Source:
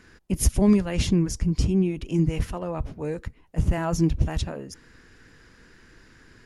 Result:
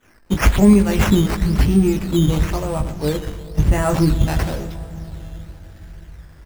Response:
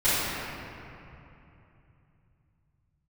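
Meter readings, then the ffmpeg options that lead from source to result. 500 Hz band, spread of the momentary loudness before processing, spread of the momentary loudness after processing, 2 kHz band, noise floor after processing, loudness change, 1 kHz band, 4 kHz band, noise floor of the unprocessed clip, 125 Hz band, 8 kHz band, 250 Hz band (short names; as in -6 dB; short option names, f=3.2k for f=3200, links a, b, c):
+7.5 dB, 12 LU, 19 LU, +11.5 dB, -46 dBFS, +7.0 dB, +9.5 dB, +7.0 dB, -55 dBFS, +7.0 dB, +2.5 dB, +7.5 dB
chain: -filter_complex "[0:a]aeval=exprs='val(0)+0.5*0.02*sgn(val(0))':c=same,highshelf=f=4.4k:g=-10.5,asplit=2[a][b];[b]adelay=20,volume=-5dB[c];[a][c]amix=inputs=2:normalize=0,agate=range=-33dB:threshold=-25dB:ratio=3:detection=peak,aresample=22050,aresample=44100,aecho=1:1:118:0.188,asplit=2[d][e];[1:a]atrim=start_sample=2205,asetrate=27783,aresample=44100[f];[e][f]afir=irnorm=-1:irlink=0,volume=-33dB[g];[d][g]amix=inputs=2:normalize=0,crystalizer=i=2.5:c=0,acrusher=samples=9:mix=1:aa=0.000001:lfo=1:lforange=9:lforate=0.99,volume=5dB"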